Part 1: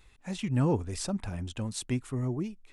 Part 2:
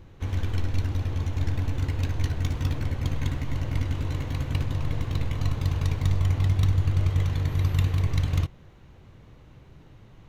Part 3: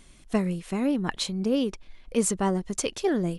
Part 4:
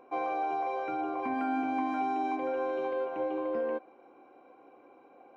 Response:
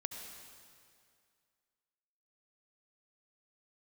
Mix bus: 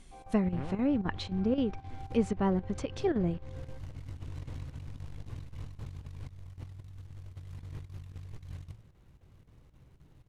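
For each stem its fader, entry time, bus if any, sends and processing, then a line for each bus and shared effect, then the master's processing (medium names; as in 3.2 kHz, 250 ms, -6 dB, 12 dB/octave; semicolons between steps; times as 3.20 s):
-0.5 dB, 0.00 s, no send, power-law waveshaper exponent 3; auto duck -13 dB, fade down 0.85 s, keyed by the third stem
-17.5 dB, 0.25 s, no send, de-hum 109 Hz, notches 2; compressor with a negative ratio -30 dBFS, ratio -1; short-mantissa float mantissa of 2-bit
-5.5 dB, 0.00 s, no send, none
-20.0 dB, 0.00 s, no send, high-pass 490 Hz; comb 2.4 ms, depth 51%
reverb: none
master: low-pass that closes with the level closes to 2.8 kHz, closed at -30.5 dBFS; bass shelf 240 Hz +6 dB; square tremolo 3.8 Hz, depth 65%, duty 85%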